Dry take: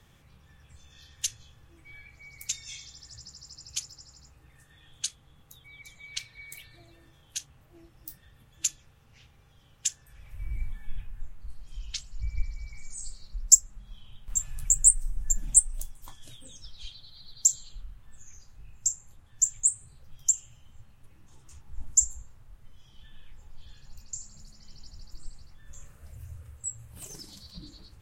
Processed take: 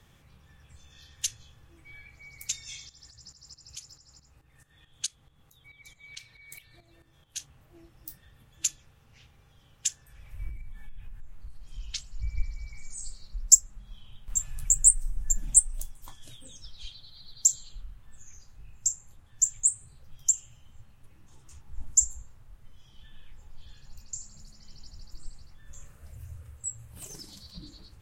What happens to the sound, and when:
2.89–7.38 s: tremolo saw up 4.6 Hz, depth 75%
10.49–11.78 s: compression 10:1, threshold -35 dBFS

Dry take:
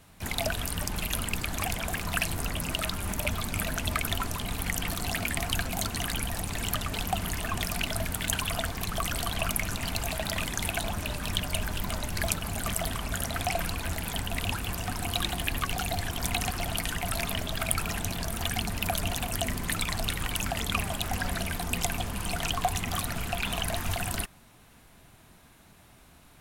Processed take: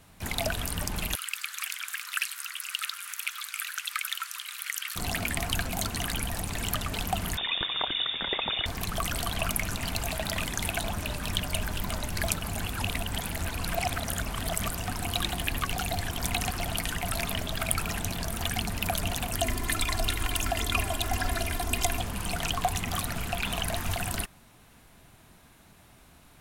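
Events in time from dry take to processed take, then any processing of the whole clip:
1.15–4.96 s: elliptic high-pass 1.3 kHz, stop band 80 dB
7.37–8.66 s: frequency inversion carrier 3.6 kHz
12.61–14.73 s: reverse
19.39–22.00 s: comb 2.9 ms

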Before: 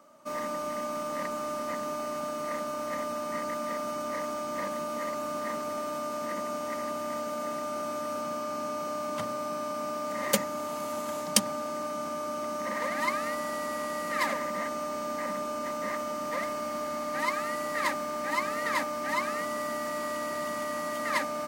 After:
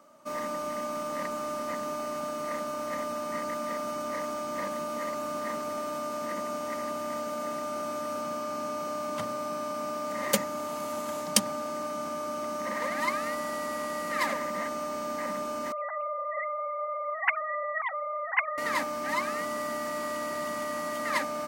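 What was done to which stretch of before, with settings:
15.72–18.58 s: formants replaced by sine waves

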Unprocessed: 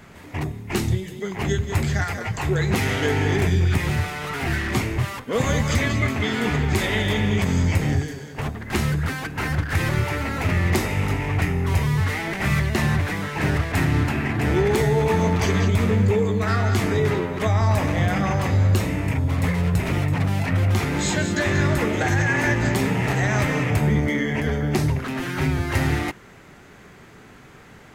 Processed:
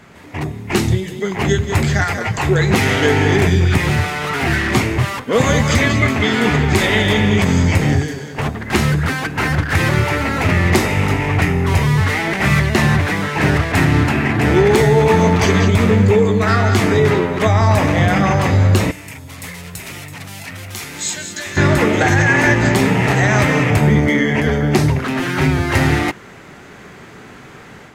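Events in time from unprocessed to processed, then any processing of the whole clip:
18.91–21.57 s: pre-emphasis filter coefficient 0.9
whole clip: treble shelf 12 kHz -7.5 dB; level rider gain up to 6 dB; bass shelf 63 Hz -10.5 dB; trim +3 dB

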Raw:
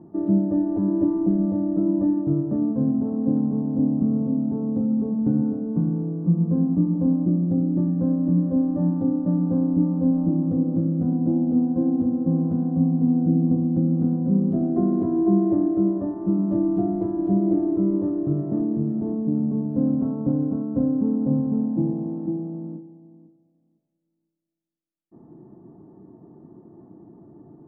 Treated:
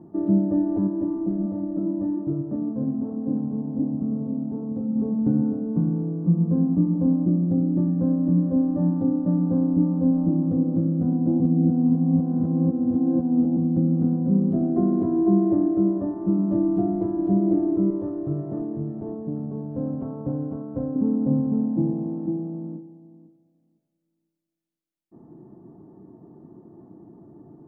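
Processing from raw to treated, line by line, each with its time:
0.87–4.96 s: flange 1.3 Hz, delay 0.1 ms, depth 9.7 ms, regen +75%
11.40–13.57 s: reverse
17.90–20.96 s: peaking EQ 230 Hz -10.5 dB

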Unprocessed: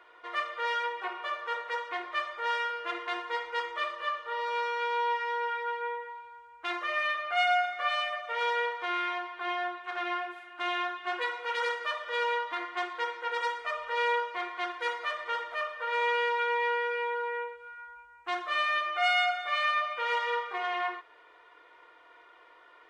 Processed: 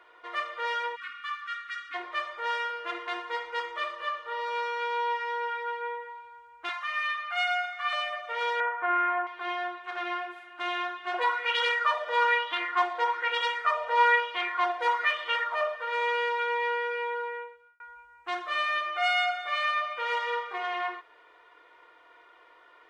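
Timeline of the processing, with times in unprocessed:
0.96–1.95 s: spectral selection erased 310–1100 Hz
6.69–7.93 s: steep high-pass 760 Hz 48 dB/octave
8.60–9.27 s: cabinet simulation 200–2200 Hz, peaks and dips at 200 Hz +6 dB, 300 Hz +7 dB, 490 Hz -4 dB, 720 Hz +7 dB, 1.1 kHz +4 dB, 1.5 kHz +8 dB
11.14–15.76 s: sweeping bell 1.1 Hz 670–3200 Hz +14 dB
17.20–17.80 s: fade out

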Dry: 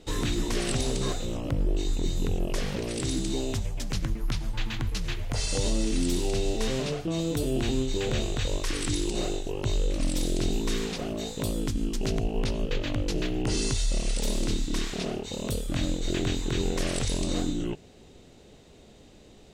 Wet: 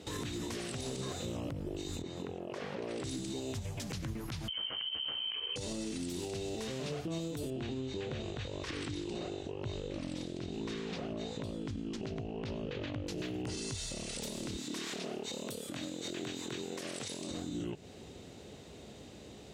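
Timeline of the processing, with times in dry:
2.02–3.04 s: band-pass filter 820 Hz, Q 0.62
4.48–5.56 s: frequency inversion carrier 3.1 kHz
7.50–13.07 s: Bessel low-pass 3.6 kHz
14.55–17.31 s: high-pass 210 Hz
whole clip: high-pass 63 Hz 24 dB/octave; compression, threshold -36 dBFS; peak limiter -32.5 dBFS; trim +2.5 dB

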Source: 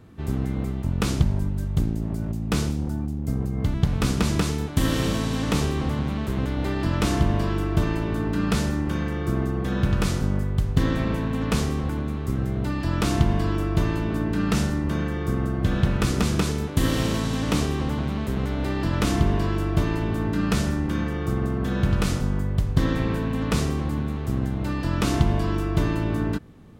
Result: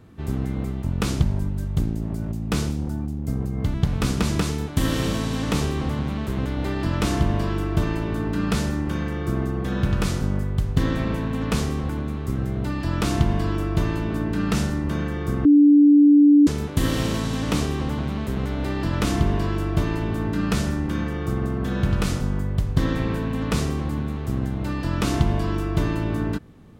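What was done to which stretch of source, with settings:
15.45–16.47 s: bleep 291 Hz -9.5 dBFS

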